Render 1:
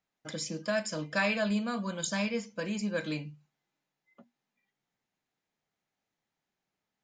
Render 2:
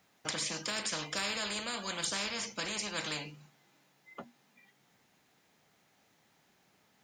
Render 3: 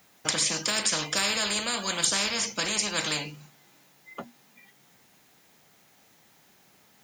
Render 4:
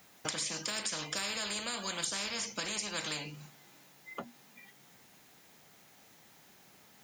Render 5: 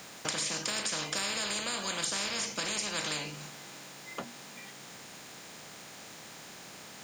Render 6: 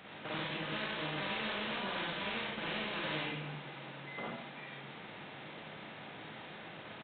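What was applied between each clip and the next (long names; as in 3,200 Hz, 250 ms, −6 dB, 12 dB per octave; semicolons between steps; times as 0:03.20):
high-pass filter 64 Hz; every bin compressed towards the loudest bin 4 to 1
high-shelf EQ 7,900 Hz +10 dB; level +7 dB
downward compressor 2.5 to 1, threshold −38 dBFS, peak gain reduction 12 dB
compressor on every frequency bin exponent 0.6
soft clipping −31.5 dBFS, distortion −12 dB; convolution reverb RT60 0.70 s, pre-delay 37 ms, DRR −5.5 dB; downsampling to 8,000 Hz; level −4.5 dB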